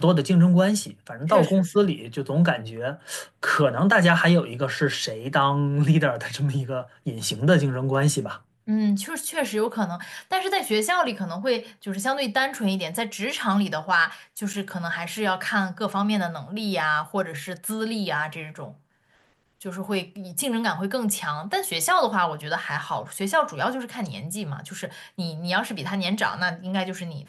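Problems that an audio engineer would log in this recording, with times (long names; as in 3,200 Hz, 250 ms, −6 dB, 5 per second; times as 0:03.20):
0:14.53–0:14.54: drop-out 7.1 ms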